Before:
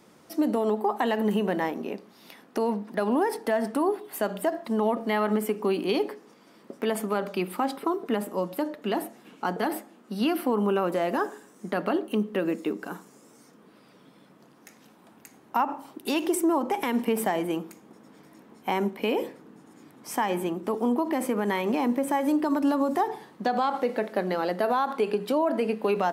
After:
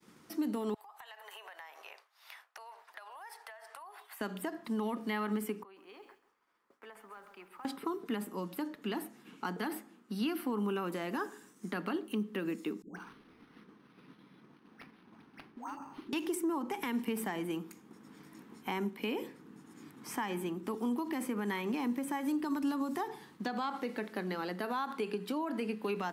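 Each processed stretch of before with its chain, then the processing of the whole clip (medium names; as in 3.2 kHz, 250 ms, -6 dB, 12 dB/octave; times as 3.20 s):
0.74–4.21 s: elliptic high-pass 620 Hz, stop band 70 dB + compression 8:1, threshold -42 dBFS
5.63–7.65 s: three-band isolator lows -24 dB, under 540 Hz, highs -15 dB, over 2 kHz + compression 2:1, threshold -57 dBFS + bit-crushed delay 134 ms, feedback 55%, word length 11-bit, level -10 dB
12.82–16.13 s: compression 3:1, threshold -36 dBFS + phase dispersion highs, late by 146 ms, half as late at 730 Hz + decimation joined by straight lines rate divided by 6×
whole clip: expander -49 dBFS; peaking EQ 610 Hz -12.5 dB 0.81 oct; three bands compressed up and down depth 40%; trim -6 dB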